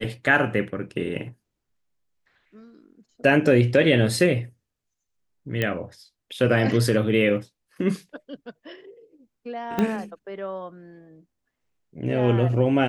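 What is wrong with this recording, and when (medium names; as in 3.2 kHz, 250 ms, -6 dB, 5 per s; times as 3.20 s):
5.62 s: pop -11 dBFS
9.79 s: pop -11 dBFS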